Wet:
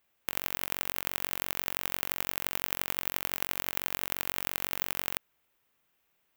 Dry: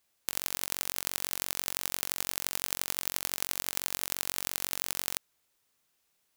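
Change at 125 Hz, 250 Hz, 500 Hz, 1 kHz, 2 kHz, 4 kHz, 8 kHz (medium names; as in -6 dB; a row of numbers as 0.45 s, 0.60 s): +3.0 dB, +3.0 dB, +3.0 dB, +3.0 dB, +3.0 dB, -2.5 dB, -7.0 dB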